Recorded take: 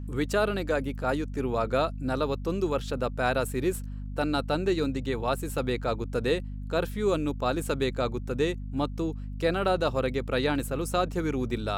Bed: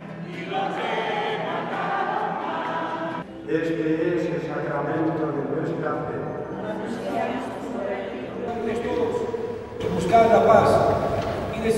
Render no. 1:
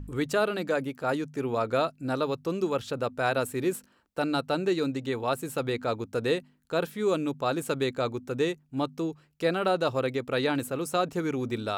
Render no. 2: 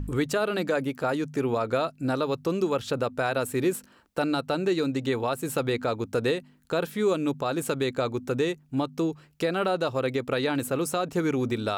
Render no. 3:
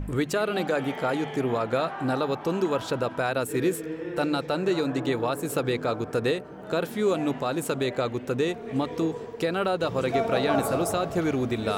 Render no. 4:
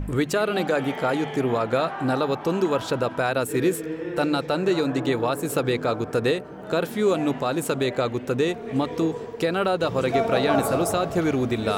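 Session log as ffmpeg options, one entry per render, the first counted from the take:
-af "bandreject=f=50:t=h:w=4,bandreject=f=100:t=h:w=4,bandreject=f=150:t=h:w=4,bandreject=f=200:t=h:w=4,bandreject=f=250:t=h:w=4"
-filter_complex "[0:a]asplit=2[s0][s1];[s1]acompressor=threshold=0.0178:ratio=6,volume=1.41[s2];[s0][s2]amix=inputs=2:normalize=0,alimiter=limit=0.158:level=0:latency=1:release=157"
-filter_complex "[1:a]volume=0.282[s0];[0:a][s0]amix=inputs=2:normalize=0"
-af "volume=1.41"

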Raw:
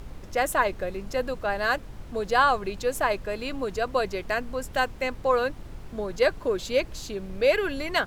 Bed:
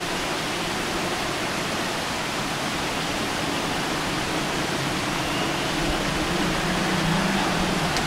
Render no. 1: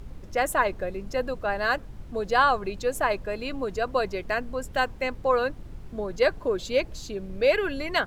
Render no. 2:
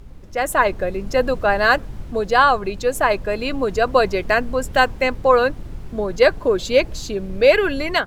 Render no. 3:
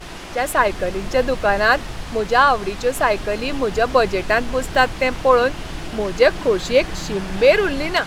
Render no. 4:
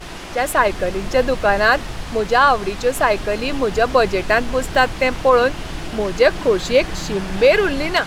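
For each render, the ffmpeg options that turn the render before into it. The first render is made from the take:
-af "afftdn=nr=6:nf=-42"
-af "dynaudnorm=f=330:g=3:m=3.76"
-filter_complex "[1:a]volume=0.355[s0];[0:a][s0]amix=inputs=2:normalize=0"
-af "volume=1.19,alimiter=limit=0.708:level=0:latency=1"

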